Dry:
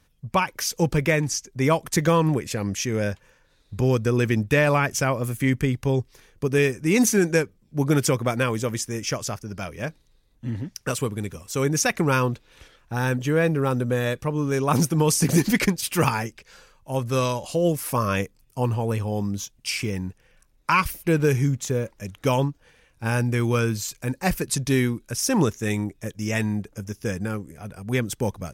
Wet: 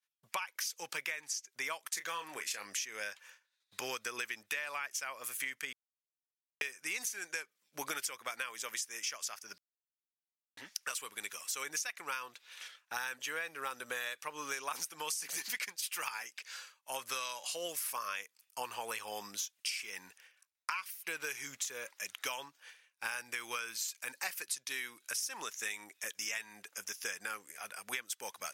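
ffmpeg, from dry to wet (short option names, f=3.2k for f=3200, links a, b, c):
-filter_complex "[0:a]asettb=1/sr,asplit=3[a][b][c];[a]atrim=end=1.914[d];[b]atrim=start=1.91:end=2.67,asetpts=PTS-STARTPTS,afade=t=in:d=0.004:c=qsin,afade=t=out:st=0.756:d=0.004:c=qsin,asplit=2[e][f];[f]adelay=29,volume=-9.5dB[g];[e][g]amix=inputs=2:normalize=0,atrim=end_sample=33516[h];[c]atrim=start=2.666[i];[d][h]acrossfade=d=0.004:c1=hsin:c2=qsin[j];[j][i]acrossfade=d=0.004:c1=qsin:c2=hsin,asplit=5[k][l][m][n][o];[k]atrim=end=5.73,asetpts=PTS-STARTPTS,afade=t=out:st=5.726:d=0.004:c=hsin[p];[l]atrim=start=5.73:end=6.61,asetpts=PTS-STARTPTS,volume=0[q];[m]atrim=start=6.61:end=9.58,asetpts=PTS-STARTPTS,afade=t=in:d=0.004:c=hsin,afade=t=out:st=2.966:d=0.004:c=hsin[r];[n]atrim=start=9.58:end=10.57,asetpts=PTS-STARTPTS,volume=0[s];[o]atrim=start=10.57,asetpts=PTS-STARTPTS,afade=t=in:d=0.004:c=hsin[t];[p][q][r][s][t]concat=n=5:v=0:a=1,agate=range=-33dB:threshold=-48dB:ratio=3:detection=peak,highpass=1.5k,acompressor=threshold=-41dB:ratio=10,volume=5.5dB"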